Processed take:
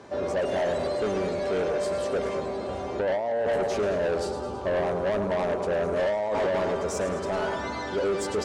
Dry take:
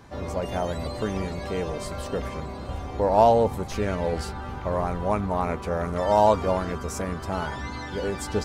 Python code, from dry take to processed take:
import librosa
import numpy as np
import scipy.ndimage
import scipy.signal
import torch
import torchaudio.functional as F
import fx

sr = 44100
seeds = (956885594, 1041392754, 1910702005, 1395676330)

y = fx.peak_eq(x, sr, hz=2000.0, db=-14.0, octaves=0.71, at=(3.87, 5.92))
y = fx.echo_feedback(y, sr, ms=107, feedback_pct=58, wet_db=-10.5)
y = fx.over_compress(y, sr, threshold_db=-24.0, ratio=-1.0)
y = fx.cabinet(y, sr, low_hz=130.0, low_slope=12, high_hz=9200.0, hz=(140.0, 390.0, 590.0), db=(-8, 8, 9))
y = 10.0 ** (-22.0 / 20.0) * np.tanh(y / 10.0 ** (-22.0 / 20.0))